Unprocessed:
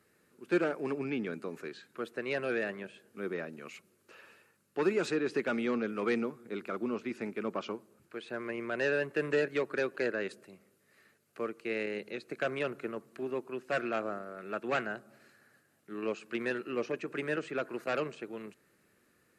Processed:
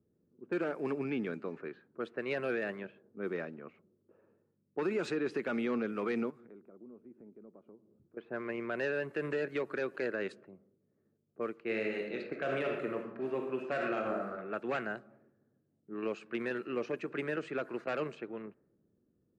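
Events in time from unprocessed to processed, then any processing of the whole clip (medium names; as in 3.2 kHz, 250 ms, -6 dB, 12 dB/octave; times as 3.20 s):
6.30–8.17 s: compression 3:1, threshold -54 dBFS
11.63–14.35 s: reverb throw, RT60 0.92 s, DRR 1.5 dB
whole clip: level-controlled noise filter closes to 300 Hz, open at -31.5 dBFS; treble shelf 5.1 kHz -10 dB; peak limiter -24.5 dBFS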